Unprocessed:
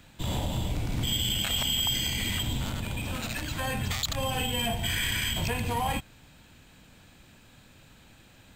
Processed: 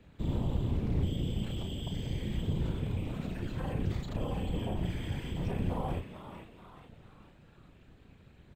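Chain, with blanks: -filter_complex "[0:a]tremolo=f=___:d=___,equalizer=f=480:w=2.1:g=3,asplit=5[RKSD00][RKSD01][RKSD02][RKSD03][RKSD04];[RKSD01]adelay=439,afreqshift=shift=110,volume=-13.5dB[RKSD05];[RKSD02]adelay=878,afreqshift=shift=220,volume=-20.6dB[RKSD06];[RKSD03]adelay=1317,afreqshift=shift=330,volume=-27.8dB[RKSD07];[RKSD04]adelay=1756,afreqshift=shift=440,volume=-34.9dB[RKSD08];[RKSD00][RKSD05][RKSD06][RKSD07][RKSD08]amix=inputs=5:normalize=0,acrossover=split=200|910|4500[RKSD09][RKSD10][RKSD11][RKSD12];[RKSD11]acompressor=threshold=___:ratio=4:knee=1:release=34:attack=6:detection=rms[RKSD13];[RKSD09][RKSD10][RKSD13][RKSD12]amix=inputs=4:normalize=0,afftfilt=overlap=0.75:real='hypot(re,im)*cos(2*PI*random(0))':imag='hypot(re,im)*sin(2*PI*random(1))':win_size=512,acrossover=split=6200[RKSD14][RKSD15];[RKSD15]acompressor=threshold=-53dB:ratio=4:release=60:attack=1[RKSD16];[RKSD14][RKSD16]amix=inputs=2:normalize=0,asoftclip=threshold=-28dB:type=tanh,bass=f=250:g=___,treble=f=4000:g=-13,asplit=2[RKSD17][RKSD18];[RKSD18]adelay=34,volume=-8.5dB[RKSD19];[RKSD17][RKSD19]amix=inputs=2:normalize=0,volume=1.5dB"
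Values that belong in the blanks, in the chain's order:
240, 0.947, -47dB, 10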